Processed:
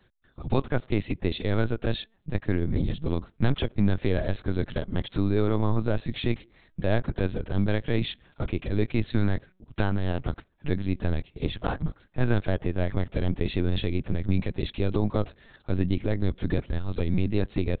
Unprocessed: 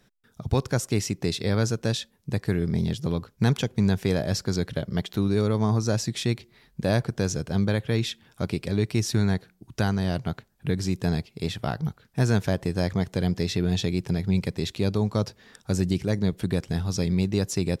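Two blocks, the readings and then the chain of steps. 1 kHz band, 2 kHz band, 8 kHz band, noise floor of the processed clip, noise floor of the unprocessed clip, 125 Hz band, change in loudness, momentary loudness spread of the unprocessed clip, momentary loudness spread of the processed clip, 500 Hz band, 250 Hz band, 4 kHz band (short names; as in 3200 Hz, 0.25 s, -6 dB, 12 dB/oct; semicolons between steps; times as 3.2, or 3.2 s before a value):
-1.5 dB, -1.5 dB, under -40 dB, -64 dBFS, -64 dBFS, -2.5 dB, -2.0 dB, 7 LU, 7 LU, -1.5 dB, -2.5 dB, -5.0 dB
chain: LPC vocoder at 8 kHz pitch kept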